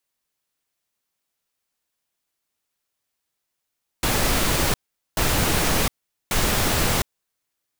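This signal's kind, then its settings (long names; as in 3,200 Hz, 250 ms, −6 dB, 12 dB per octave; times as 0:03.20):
noise bursts pink, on 0.71 s, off 0.43 s, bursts 3, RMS −20.5 dBFS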